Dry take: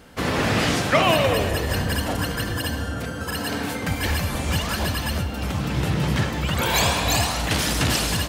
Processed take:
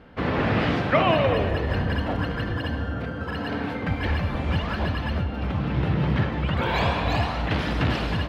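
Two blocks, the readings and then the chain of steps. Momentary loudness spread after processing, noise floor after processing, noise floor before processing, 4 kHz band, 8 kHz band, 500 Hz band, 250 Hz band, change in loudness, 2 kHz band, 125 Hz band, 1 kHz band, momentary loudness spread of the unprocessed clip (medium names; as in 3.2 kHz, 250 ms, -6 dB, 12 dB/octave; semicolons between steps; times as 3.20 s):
8 LU, -31 dBFS, -30 dBFS, -8.5 dB, under -25 dB, -1.0 dB, -0.5 dB, -2.5 dB, -3.5 dB, 0.0 dB, -1.5 dB, 8 LU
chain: distance through air 360 m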